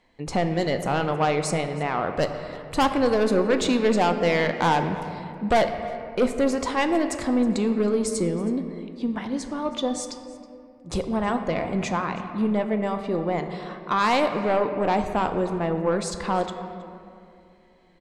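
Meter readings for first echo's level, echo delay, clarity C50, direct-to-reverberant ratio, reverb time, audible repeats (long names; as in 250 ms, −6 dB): −20.0 dB, 320 ms, 8.0 dB, 6.5 dB, 2.6 s, 1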